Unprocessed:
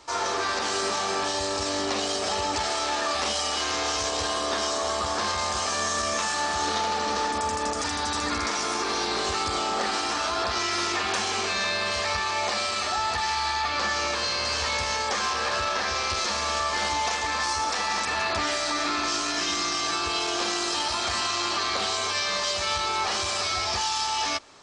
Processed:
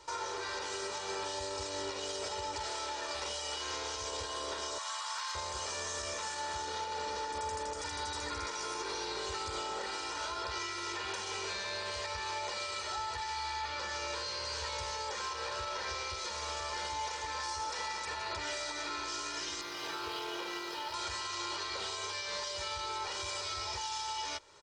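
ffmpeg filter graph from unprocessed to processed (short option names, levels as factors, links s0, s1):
-filter_complex "[0:a]asettb=1/sr,asplit=3[s0][s1][s2];[s0]atrim=end=4.784[s3];[s1]atrim=start=4.78:end=5.35,asetpts=PTS-STARTPTS,afade=t=in:d=0.004:c=qsin,afade=t=out:st=0.566:d=0.004:c=qsin,highpass=f=940:w=0.5412,highpass=f=940:w=1.3066,asoftclip=type=hard:threshold=0.106[s4];[s2]atrim=start=5.346[s5];[s3][s4]acrossfade=d=0.004:c1=hsin:c2=qsin[s6];[s6][s5]acrossfade=d=0.004:c1=qsin:c2=hsin,asettb=1/sr,asplit=3[s7][s8][s9];[s7]atrim=end=19.614[s10];[s8]atrim=start=19.61:end=20.94,asetpts=PTS-STARTPTS,afade=t=in:d=0.004:c=qsin,afade=t=out:st=1.326:d=0.004:c=qsin,highpass=130,lowpass=3600,aeval=exprs='sgn(val(0))*max(abs(val(0))-0.00668,0)':c=same[s11];[s9]atrim=start=20.936[s12];[s10][s11]acrossfade=d=0.004:c1=hsin:c2=qsin[s13];[s13][s12]acrossfade=d=0.004:c1=qsin:c2=hsin,aecho=1:1:2.1:0.72,alimiter=limit=0.0794:level=0:latency=1:release=394,volume=0.473"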